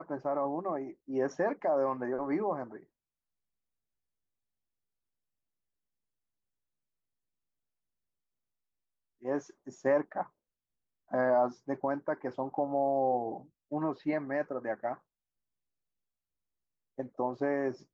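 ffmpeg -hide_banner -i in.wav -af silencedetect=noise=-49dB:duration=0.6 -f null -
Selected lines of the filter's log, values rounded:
silence_start: 2.83
silence_end: 9.22 | silence_duration: 6.40
silence_start: 10.27
silence_end: 11.11 | silence_duration: 0.84
silence_start: 14.97
silence_end: 16.98 | silence_duration: 2.01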